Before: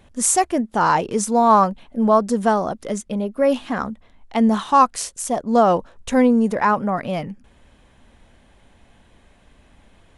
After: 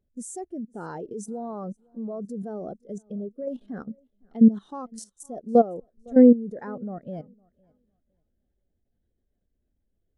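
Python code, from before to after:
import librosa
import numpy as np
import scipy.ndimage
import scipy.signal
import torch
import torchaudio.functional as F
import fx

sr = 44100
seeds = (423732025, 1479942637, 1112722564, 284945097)

p1 = fx.graphic_eq_15(x, sr, hz=(400, 1000, 2500), db=(5, -12, -9))
p2 = fx.level_steps(p1, sr, step_db=14)
p3 = p2 + fx.echo_feedback(p2, sr, ms=508, feedback_pct=32, wet_db=-19.5, dry=0)
p4 = fx.spectral_expand(p3, sr, expansion=1.5)
y = p4 * librosa.db_to_amplitude(1.0)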